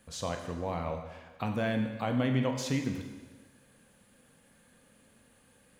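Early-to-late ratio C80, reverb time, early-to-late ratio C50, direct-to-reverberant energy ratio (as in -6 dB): 8.0 dB, 1.3 s, 6.5 dB, 4.0 dB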